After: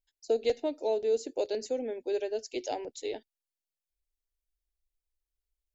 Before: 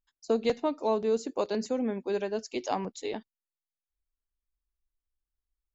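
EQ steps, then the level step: static phaser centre 470 Hz, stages 4; 0.0 dB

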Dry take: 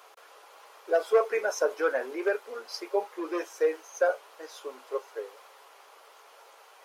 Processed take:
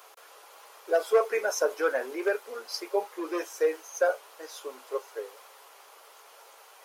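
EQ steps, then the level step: treble shelf 6.5 kHz +9 dB; 0.0 dB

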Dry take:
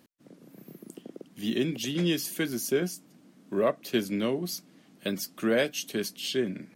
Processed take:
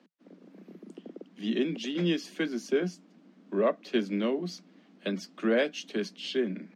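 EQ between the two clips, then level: steep high-pass 170 Hz 96 dB/octave; distance through air 150 m; 0.0 dB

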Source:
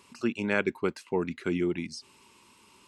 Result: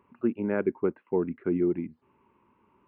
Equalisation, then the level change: dynamic bell 340 Hz, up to +6 dB, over -39 dBFS, Q 0.77; Gaussian low-pass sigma 5.1 samples; -2.5 dB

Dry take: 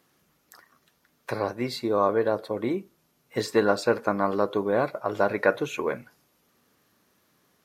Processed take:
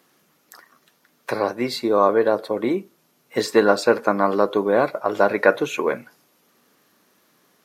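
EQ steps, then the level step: high-pass 180 Hz 12 dB/octave; +6.0 dB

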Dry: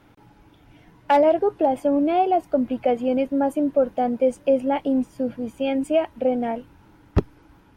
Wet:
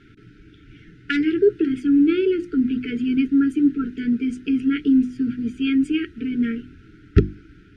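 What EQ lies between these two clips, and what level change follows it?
brick-wall FIR band-stop 450–1300 Hz; distance through air 100 m; hum notches 50/100/150/200/250/300/350 Hz; +6.5 dB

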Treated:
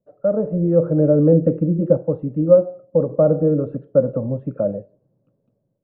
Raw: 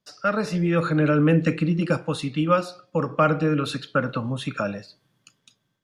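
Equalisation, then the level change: resonant low-pass 560 Hz, resonance Q 4.9; distance through air 450 m; bass shelf 390 Hz +7.5 dB; -3.5 dB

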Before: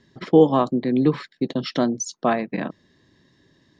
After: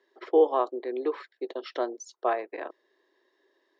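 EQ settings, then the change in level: elliptic high-pass 370 Hz, stop band 60 dB; treble shelf 2.6 kHz -9.5 dB; treble shelf 5.8 kHz -6 dB; -3.5 dB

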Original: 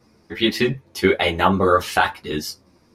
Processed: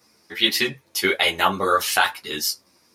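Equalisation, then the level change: tilt EQ +3.5 dB/octave; -2.0 dB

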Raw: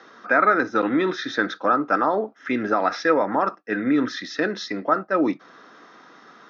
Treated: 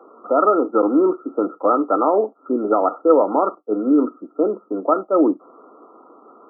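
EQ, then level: high-pass 240 Hz 24 dB/octave; brick-wall FIR low-pass 1.4 kHz; peaking EQ 420 Hz +8.5 dB 1.9 oct; -1.0 dB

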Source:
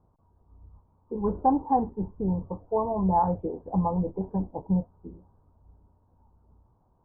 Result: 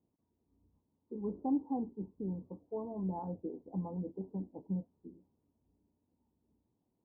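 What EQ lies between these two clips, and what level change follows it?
band-pass filter 280 Hz, Q 2; -5.5 dB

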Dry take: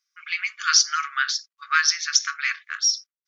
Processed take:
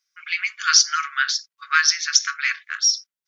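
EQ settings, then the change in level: band-stop 1.2 kHz, Q 13; +2.5 dB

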